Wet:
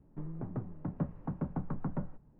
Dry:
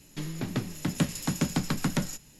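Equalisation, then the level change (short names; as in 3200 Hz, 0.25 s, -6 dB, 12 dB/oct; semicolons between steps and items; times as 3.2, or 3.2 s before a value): LPF 1100 Hz 24 dB/oct; dynamic EQ 260 Hz, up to -5 dB, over -37 dBFS, Q 0.83; low shelf 140 Hz +4.5 dB; -6.0 dB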